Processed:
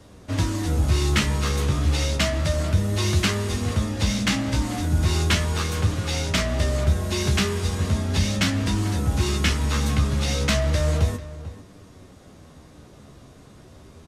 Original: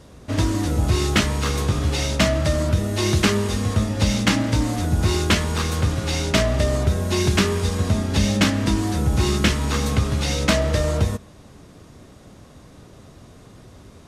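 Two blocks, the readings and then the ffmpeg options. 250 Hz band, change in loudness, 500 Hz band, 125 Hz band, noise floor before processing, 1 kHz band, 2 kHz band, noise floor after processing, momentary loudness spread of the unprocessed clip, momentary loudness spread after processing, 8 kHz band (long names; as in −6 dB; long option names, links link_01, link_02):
−4.0 dB, −2.0 dB, −5.0 dB, −1.0 dB, −47 dBFS, −3.5 dB, −2.5 dB, −48 dBFS, 3 LU, 4 LU, −2.0 dB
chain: -filter_complex "[0:a]flanger=delay=10:depth=5:regen=42:speed=0.34:shape=triangular,acrossover=split=180|1200[link_01][link_02][link_03];[link_02]asoftclip=type=tanh:threshold=-28.5dB[link_04];[link_01][link_04][link_03]amix=inputs=3:normalize=0,asplit=2[link_05][link_06];[link_06]adelay=443.1,volume=-15dB,highshelf=frequency=4000:gain=-9.97[link_07];[link_05][link_07]amix=inputs=2:normalize=0,volume=2dB"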